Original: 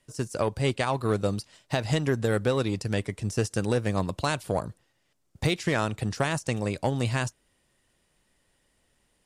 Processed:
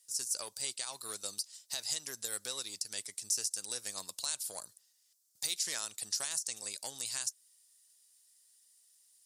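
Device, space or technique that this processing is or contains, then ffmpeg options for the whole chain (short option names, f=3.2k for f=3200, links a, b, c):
over-bright horn tweeter: -af "aderivative,highshelf=f=3.6k:t=q:w=1.5:g=8,alimiter=limit=-19.5dB:level=0:latency=1:release=174"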